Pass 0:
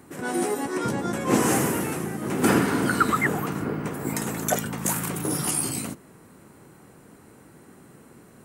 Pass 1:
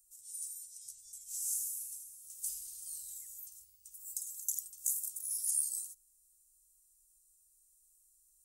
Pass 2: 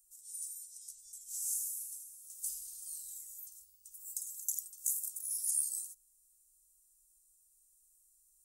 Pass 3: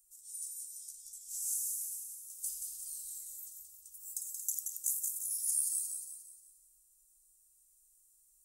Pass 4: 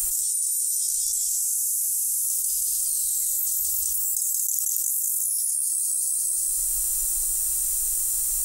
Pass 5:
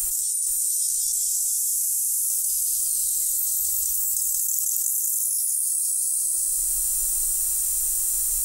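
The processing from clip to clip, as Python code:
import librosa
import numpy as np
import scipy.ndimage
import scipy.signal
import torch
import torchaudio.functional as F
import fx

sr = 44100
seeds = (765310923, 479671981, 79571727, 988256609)

y1 = scipy.signal.sosfilt(scipy.signal.cheby2(4, 80, [180.0, 1300.0], 'bandstop', fs=sr, output='sos'), x)
y1 = F.gain(torch.from_numpy(y1), -5.5).numpy()
y2 = fx.fixed_phaser(y1, sr, hz=420.0, stages=6)
y3 = fx.echo_feedback(y2, sr, ms=178, feedback_pct=45, wet_db=-5.0)
y4 = fx.env_flatten(y3, sr, amount_pct=100)
y4 = F.gain(torch.from_numpy(y4), 4.5).numpy()
y5 = y4 + 10.0 ** (-6.0 / 20.0) * np.pad(y4, (int(466 * sr / 1000.0), 0))[:len(y4)]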